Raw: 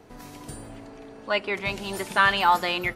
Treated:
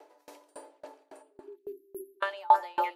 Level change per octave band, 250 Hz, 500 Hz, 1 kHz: −15.0, −8.0, −3.5 decibels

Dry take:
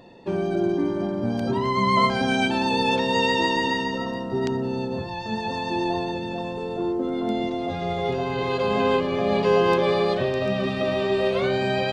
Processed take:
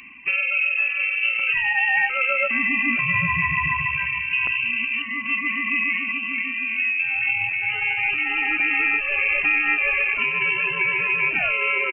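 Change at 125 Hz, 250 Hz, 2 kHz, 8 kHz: −7.5 dB, −11.0 dB, +12.5 dB, below −35 dB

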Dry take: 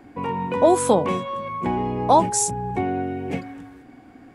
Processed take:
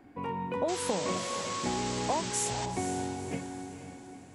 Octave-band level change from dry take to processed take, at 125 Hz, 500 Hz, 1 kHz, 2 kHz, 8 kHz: −9.0, −12.5, −12.0, −4.0, −7.5 decibels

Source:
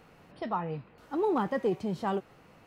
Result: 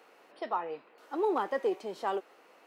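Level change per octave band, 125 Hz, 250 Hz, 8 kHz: below −20 dB, −7.0 dB, can't be measured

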